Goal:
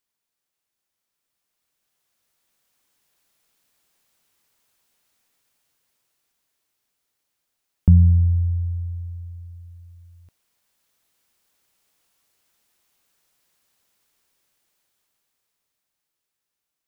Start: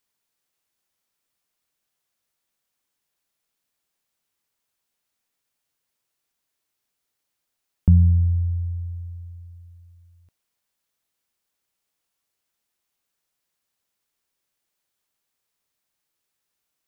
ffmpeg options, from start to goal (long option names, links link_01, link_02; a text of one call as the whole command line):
ffmpeg -i in.wav -af "dynaudnorm=framelen=260:gausssize=17:maxgain=14dB,volume=-3.5dB" out.wav